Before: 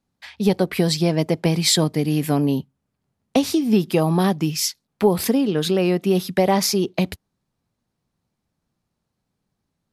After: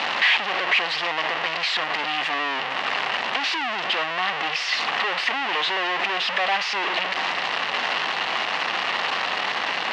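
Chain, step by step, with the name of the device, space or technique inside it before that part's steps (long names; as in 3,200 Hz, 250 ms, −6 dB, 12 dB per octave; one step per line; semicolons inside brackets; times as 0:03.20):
home computer beeper (sign of each sample alone; loudspeaker in its box 740–4,200 Hz, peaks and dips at 760 Hz +5 dB, 1,100 Hz +5 dB, 1,900 Hz +8 dB, 2,800 Hz +9 dB)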